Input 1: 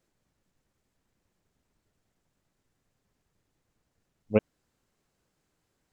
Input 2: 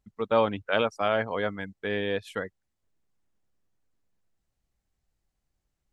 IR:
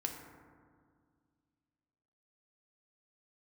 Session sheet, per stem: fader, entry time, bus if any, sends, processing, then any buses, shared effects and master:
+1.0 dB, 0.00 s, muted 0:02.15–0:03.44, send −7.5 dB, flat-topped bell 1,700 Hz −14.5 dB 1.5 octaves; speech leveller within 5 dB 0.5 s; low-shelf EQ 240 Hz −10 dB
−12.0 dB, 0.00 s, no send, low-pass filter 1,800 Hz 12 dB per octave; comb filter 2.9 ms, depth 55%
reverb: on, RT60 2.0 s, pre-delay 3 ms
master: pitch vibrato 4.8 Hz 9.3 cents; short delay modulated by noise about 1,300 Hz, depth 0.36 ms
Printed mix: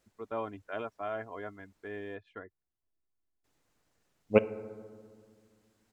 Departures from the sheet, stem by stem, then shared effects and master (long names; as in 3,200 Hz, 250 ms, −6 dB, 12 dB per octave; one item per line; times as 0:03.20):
stem 1: missing flat-topped bell 1,700 Hz −14.5 dB 1.5 octaves
master: missing short delay modulated by noise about 1,300 Hz, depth 0.36 ms